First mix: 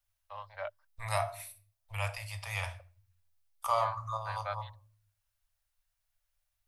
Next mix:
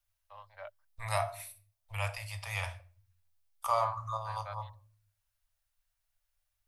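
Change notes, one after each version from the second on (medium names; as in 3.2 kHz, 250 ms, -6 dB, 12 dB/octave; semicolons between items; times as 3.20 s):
first voice -7.0 dB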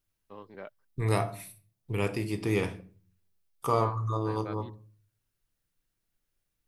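master: remove Chebyshev band-stop 100–580 Hz, order 5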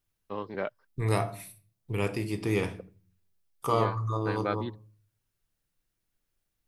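first voice +11.0 dB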